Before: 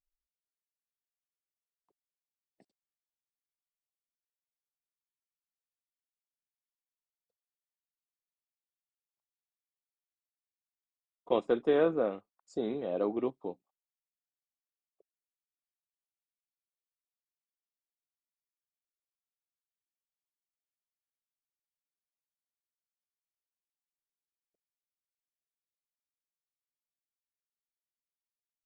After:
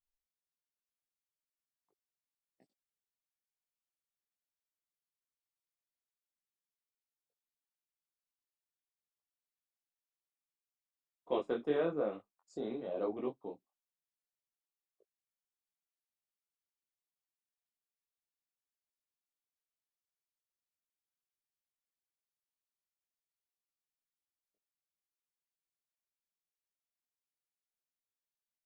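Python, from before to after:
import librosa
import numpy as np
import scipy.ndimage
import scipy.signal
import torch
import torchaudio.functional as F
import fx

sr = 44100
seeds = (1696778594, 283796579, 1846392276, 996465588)

y = fx.detune_double(x, sr, cents=37)
y = F.gain(torch.from_numpy(y), -1.5).numpy()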